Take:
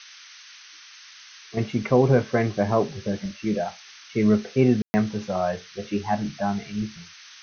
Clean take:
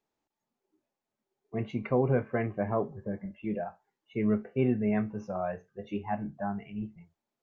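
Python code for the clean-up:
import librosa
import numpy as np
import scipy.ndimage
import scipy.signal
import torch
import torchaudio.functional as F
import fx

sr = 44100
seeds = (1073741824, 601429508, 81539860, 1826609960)

y = fx.fix_ambience(x, sr, seeds[0], print_start_s=0.58, print_end_s=1.08, start_s=4.82, end_s=4.94)
y = fx.noise_reduce(y, sr, print_start_s=0.58, print_end_s=1.08, reduce_db=30.0)
y = fx.gain(y, sr, db=fx.steps((0.0, 0.0), (1.57, -8.0)))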